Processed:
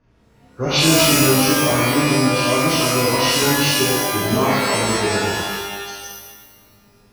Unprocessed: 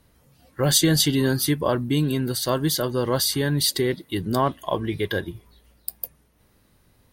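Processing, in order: nonlinear frequency compression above 1100 Hz 1.5:1; low-pass opened by the level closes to 2400 Hz, open at -18.5 dBFS; shimmer reverb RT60 1.2 s, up +12 st, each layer -2 dB, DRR -7 dB; gain -4 dB

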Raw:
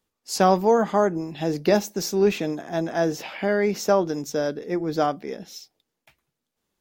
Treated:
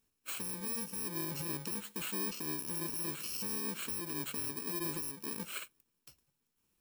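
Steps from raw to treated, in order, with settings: FFT order left unsorted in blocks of 64 samples; compressor 6:1, threshold -32 dBFS, peak gain reduction 18.5 dB; limiter -29.5 dBFS, peak gain reduction 10 dB

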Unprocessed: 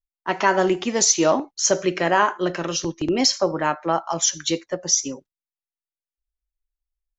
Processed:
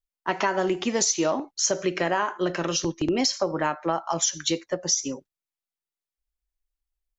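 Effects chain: compressor, threshold -20 dBFS, peak gain reduction 8 dB

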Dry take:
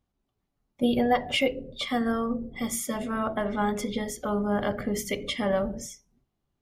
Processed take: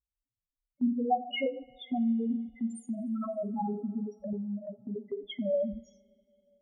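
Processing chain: loudest bins only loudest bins 2; 4.33–4.96 resonator 64 Hz, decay 0.33 s, harmonics all, mix 60%; gate -40 dBFS, range -11 dB; two-slope reverb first 0.43 s, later 3.3 s, from -21 dB, DRR 12.5 dB

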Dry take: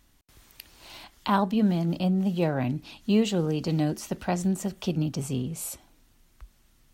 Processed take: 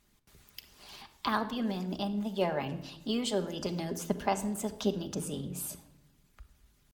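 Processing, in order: added harmonics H 3 -27 dB, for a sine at -10 dBFS; harmonic-percussive split harmonic -12 dB; pitch shift +1.5 st; shoebox room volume 3100 m³, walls furnished, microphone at 1.3 m

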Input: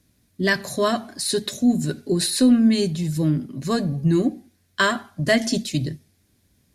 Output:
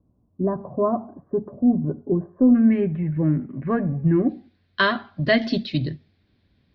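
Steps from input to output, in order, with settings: steep low-pass 1100 Hz 48 dB/oct, from 2.54 s 2300 Hz, from 4.28 s 4400 Hz

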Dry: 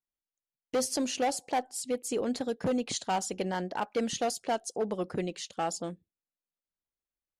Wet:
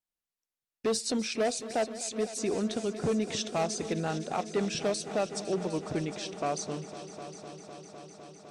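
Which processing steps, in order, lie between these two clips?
multi-head echo 0.22 s, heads all three, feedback 73%, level -18 dB; varispeed -13%

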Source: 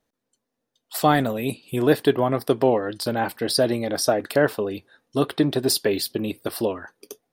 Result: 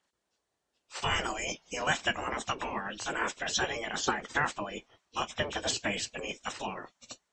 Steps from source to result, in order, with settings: nonlinear frequency compression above 2100 Hz 1.5:1; resonant low shelf 130 Hz +7.5 dB, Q 3; spectral gate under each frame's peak -15 dB weak; gain +2.5 dB

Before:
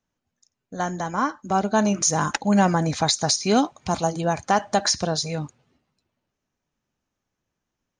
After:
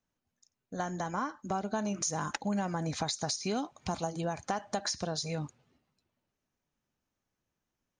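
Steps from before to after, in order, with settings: compressor 5:1, threshold -26 dBFS, peak gain reduction 12 dB; gain -4.5 dB

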